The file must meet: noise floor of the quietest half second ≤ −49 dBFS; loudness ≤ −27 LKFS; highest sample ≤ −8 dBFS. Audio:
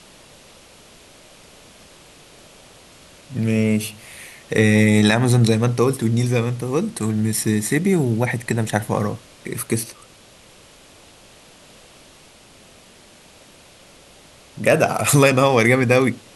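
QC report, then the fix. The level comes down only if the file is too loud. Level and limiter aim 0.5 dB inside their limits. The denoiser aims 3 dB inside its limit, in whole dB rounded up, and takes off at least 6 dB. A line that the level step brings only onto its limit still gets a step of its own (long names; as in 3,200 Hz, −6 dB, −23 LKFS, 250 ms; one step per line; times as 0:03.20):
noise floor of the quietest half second −48 dBFS: out of spec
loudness −18.5 LKFS: out of spec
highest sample −1.5 dBFS: out of spec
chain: level −9 dB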